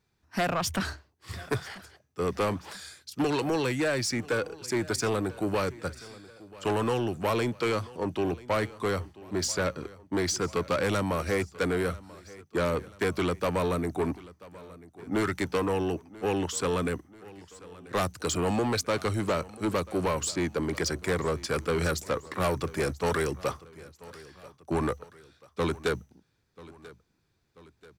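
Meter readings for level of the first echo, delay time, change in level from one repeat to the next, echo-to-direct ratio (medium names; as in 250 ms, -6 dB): -20.0 dB, 987 ms, -5.5 dB, -19.0 dB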